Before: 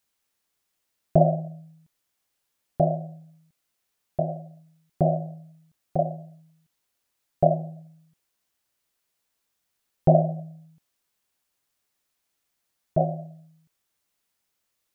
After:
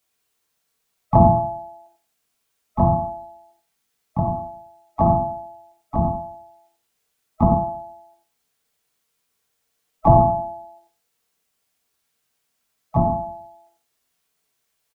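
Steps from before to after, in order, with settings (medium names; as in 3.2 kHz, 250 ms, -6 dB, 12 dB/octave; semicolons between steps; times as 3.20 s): split-band scrambler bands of 500 Hz; harmony voices -12 st -12 dB, +4 st -3 dB; loudspeakers at several distances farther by 20 m -11 dB, 31 m -9 dB; on a send at -4 dB: reverberation RT60 0.40 s, pre-delay 3 ms; on the sum: trim +1 dB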